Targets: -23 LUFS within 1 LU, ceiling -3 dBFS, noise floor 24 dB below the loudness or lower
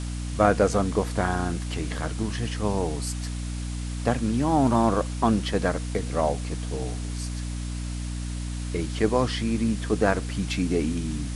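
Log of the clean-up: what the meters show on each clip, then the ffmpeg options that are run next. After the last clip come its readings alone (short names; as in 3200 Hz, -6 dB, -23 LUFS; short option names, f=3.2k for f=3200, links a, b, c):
hum 60 Hz; harmonics up to 300 Hz; hum level -29 dBFS; noise floor -31 dBFS; noise floor target -51 dBFS; loudness -26.5 LUFS; peak -4.0 dBFS; loudness target -23.0 LUFS
-> -af "bandreject=f=60:t=h:w=4,bandreject=f=120:t=h:w=4,bandreject=f=180:t=h:w=4,bandreject=f=240:t=h:w=4,bandreject=f=300:t=h:w=4"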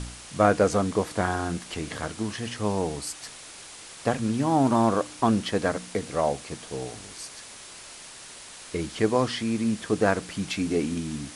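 hum none; noise floor -44 dBFS; noise floor target -51 dBFS
-> -af "afftdn=nr=7:nf=-44"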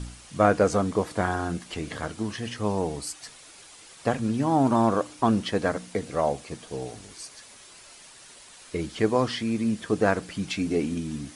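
noise floor -49 dBFS; noise floor target -51 dBFS
-> -af "afftdn=nr=6:nf=-49"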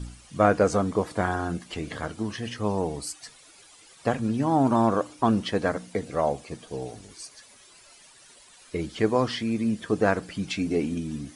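noise floor -53 dBFS; loudness -26.5 LUFS; peak -5.0 dBFS; loudness target -23.0 LUFS
-> -af "volume=3.5dB,alimiter=limit=-3dB:level=0:latency=1"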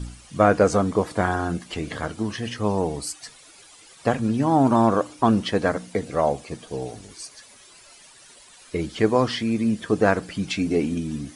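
loudness -23.0 LUFS; peak -3.0 dBFS; noise floor -50 dBFS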